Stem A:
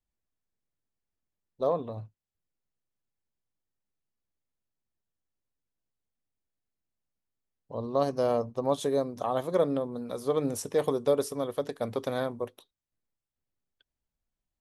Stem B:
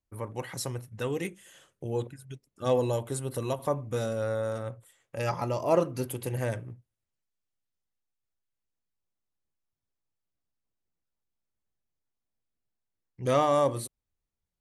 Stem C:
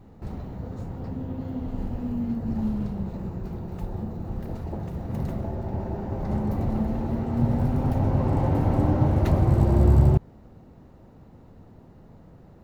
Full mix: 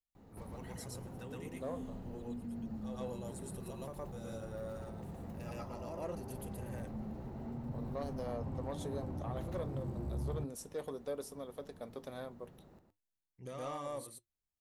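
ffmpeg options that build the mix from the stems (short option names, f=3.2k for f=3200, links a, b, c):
-filter_complex "[0:a]volume=-9.5dB[a];[1:a]adelay=200,volume=-8.5dB,asplit=2[b][c];[c]volume=-4.5dB[d];[2:a]lowshelf=f=120:g=-7.5,acrossover=split=260[e][f];[f]acompressor=threshold=-38dB:ratio=2[g];[e][g]amix=inputs=2:normalize=0,adelay=150,volume=-3dB,asplit=2[h][i];[i]volume=-8dB[j];[b][h]amix=inputs=2:normalize=0,acompressor=threshold=-40dB:ratio=4,volume=0dB[k];[d][j]amix=inputs=2:normalize=0,aecho=0:1:116:1[l];[a][k][l]amix=inputs=3:normalize=0,highshelf=f=6.1k:g=5,asoftclip=type=tanh:threshold=-26dB,flanger=delay=3.9:depth=1.5:regen=-81:speed=0.36:shape=triangular"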